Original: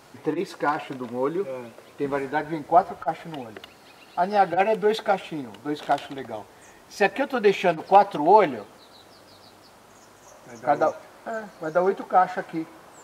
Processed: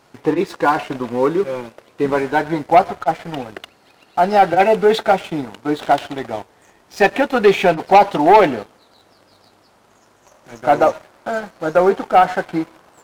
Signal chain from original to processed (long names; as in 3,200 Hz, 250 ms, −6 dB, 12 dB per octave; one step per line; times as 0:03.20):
high-shelf EQ 7,000 Hz −5 dB
leveller curve on the samples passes 2
level +1.5 dB